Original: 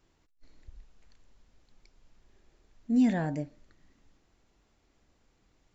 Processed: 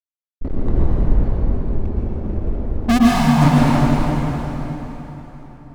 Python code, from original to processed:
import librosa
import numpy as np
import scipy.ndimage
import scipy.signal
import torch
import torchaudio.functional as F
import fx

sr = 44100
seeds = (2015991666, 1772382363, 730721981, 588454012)

y = fx.env_lowpass(x, sr, base_hz=360.0, full_db=-27.0)
y = fx.fuzz(y, sr, gain_db=55.0, gate_db=-58.0)
y = fx.double_bandpass(y, sr, hz=360.0, octaves=2.6, at=(2.97, 3.41), fade=0.02)
y = fx.rev_plate(y, sr, seeds[0], rt60_s=4.1, hf_ratio=0.8, predelay_ms=100, drr_db=-6.5)